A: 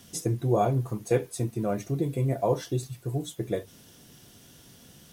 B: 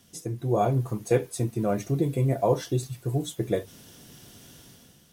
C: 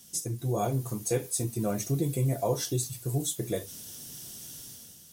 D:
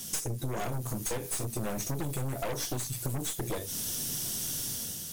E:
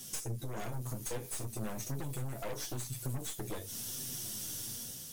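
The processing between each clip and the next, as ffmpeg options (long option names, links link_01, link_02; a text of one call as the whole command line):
ffmpeg -i in.wav -af "dynaudnorm=framelen=110:gausssize=9:maxgain=10dB,volume=-6.5dB" out.wav
ffmpeg -i in.wav -filter_complex "[0:a]bass=frequency=250:gain=2,treble=frequency=4000:gain=15,asplit=2[link_01][link_02];[link_02]alimiter=limit=-17dB:level=0:latency=1:release=100,volume=2.5dB[link_03];[link_01][link_03]amix=inputs=2:normalize=0,flanger=delay=5.1:depth=9.7:regen=-58:speed=0.46:shape=triangular,volume=-7dB" out.wav
ffmpeg -i in.wav -af "aeval=exprs='0.178*sin(PI/2*1.78*val(0)/0.178)':channel_layout=same,aeval=exprs='0.188*(cos(1*acos(clip(val(0)/0.188,-1,1)))-cos(1*PI/2))+0.0841*(cos(4*acos(clip(val(0)/0.188,-1,1)))-cos(4*PI/2))+0.0335*(cos(5*acos(clip(val(0)/0.188,-1,1)))-cos(5*PI/2))+0.0376*(cos(6*acos(clip(val(0)/0.188,-1,1)))-cos(6*PI/2))+0.0106*(cos(8*acos(clip(val(0)/0.188,-1,1)))-cos(8*PI/2))':channel_layout=same,acompressor=threshold=-29dB:ratio=6,volume=-1.5dB" out.wav
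ffmpeg -i in.wav -af "flanger=delay=7.5:depth=2.3:regen=44:speed=1:shape=triangular,volume=-2.5dB" out.wav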